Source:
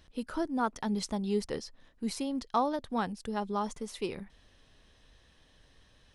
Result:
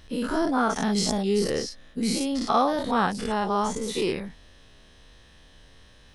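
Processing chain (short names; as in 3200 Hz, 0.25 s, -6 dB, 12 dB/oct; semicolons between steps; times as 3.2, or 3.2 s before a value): spectral dilation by 0.12 s; 0.59–2.77 notch 960 Hz, Q 5.4; gain +4 dB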